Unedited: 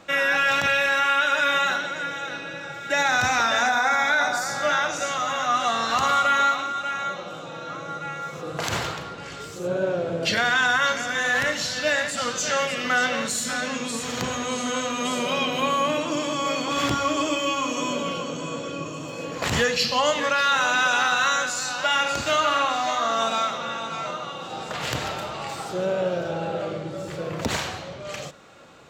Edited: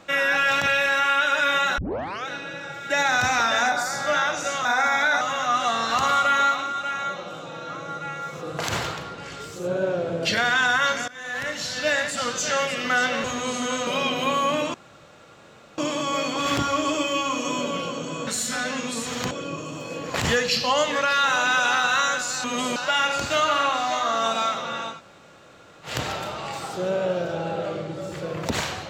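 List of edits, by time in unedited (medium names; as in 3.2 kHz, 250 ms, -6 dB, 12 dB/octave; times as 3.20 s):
1.78 s: tape start 0.49 s
3.72–4.28 s: move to 5.21 s
11.08–11.87 s: fade in, from -20 dB
13.24–14.28 s: move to 18.59 s
14.91–15.23 s: move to 21.72 s
16.10 s: insert room tone 1.04 s
23.90–24.85 s: room tone, crossfade 0.16 s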